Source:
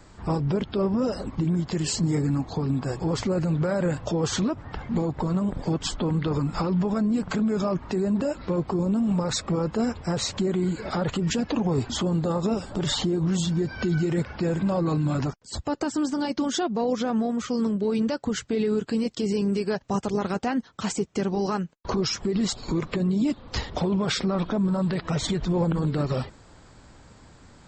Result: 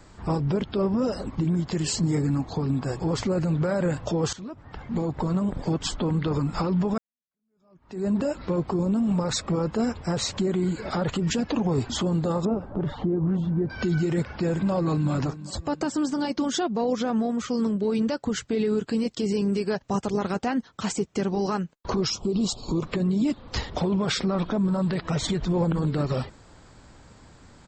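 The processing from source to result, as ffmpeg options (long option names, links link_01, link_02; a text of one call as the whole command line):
ffmpeg -i in.wav -filter_complex "[0:a]asettb=1/sr,asplit=3[link_01][link_02][link_03];[link_01]atrim=end=12.454[link_04];[link_02]atrim=start=12.45:end=13.7,asetpts=PTS-STARTPTS,afade=type=in:duration=0.004:curve=qsin,afade=type=out:start_time=1.246:duration=0.004:curve=qsin,lowpass=1100[link_05];[link_03]atrim=start=13.696[link_06];[link_04][link_05]acrossfade=duration=0.004:curve1=hsin:curve2=qsin[link_07];[link_07][link_06]acrossfade=duration=0.004:curve1=qsin:curve2=hsin,asplit=2[link_08][link_09];[link_09]afade=type=in:start_time=14.38:duration=0.01,afade=type=out:start_time=15.11:duration=0.01,aecho=0:1:390|780|1170|1560:0.177828|0.0800226|0.0360102|0.0162046[link_10];[link_08][link_10]amix=inputs=2:normalize=0,asettb=1/sr,asplit=3[link_11][link_12][link_13];[link_11]atrim=end=22.104[link_14];[link_12]atrim=start=22.1:end=22.83,asetpts=PTS-STARTPTS,afade=type=in:duration=0.004:curve=qsin,afade=type=out:start_time=0.726:duration=0.004:curve=qsin,asuperstop=centerf=1800:order=4:qfactor=1.1[link_15];[link_13]atrim=start=22.826[link_16];[link_14][link_15]acrossfade=duration=0.004:curve1=hsin:curve2=qsin[link_17];[link_17][link_16]acrossfade=duration=0.004:curve1=qsin:curve2=hsin,asplit=3[link_18][link_19][link_20];[link_18]atrim=end=4.33,asetpts=PTS-STARTPTS,afade=type=out:start_time=4.326:duration=0.004:curve=hsin:silence=0.105925[link_21];[link_19]atrim=start=4.33:end=6.98,asetpts=PTS-STARTPTS,afade=type=in:duration=0.83:silence=0.105925,afade=type=out:start_time=2.646:duration=0.004:curve=hsin[link_22];[link_20]atrim=start=6.98,asetpts=PTS-STARTPTS,afade=type=in:duration=1.08:curve=exp[link_23];[link_21][link_22][link_23]concat=n=3:v=0:a=1" out.wav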